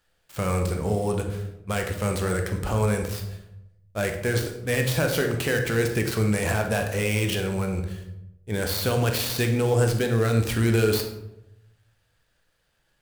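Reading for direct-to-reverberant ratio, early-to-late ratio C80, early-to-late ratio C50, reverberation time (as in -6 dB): 4.0 dB, 10.0 dB, 7.0 dB, 0.90 s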